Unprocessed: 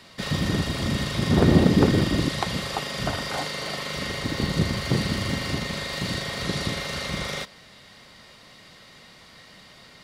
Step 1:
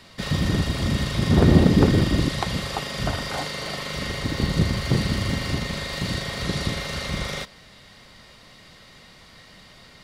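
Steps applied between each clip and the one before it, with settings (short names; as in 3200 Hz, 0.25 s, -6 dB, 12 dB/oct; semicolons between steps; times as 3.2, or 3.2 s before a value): low shelf 74 Hz +11 dB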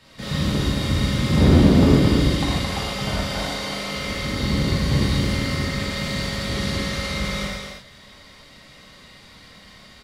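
on a send: echo 0.219 s -5 dB; on the sum: non-linear reverb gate 0.17 s flat, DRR -7 dB; gain -7 dB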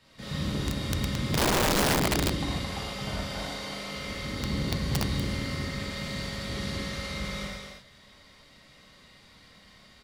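wrapped overs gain 10.5 dB; gain -8.5 dB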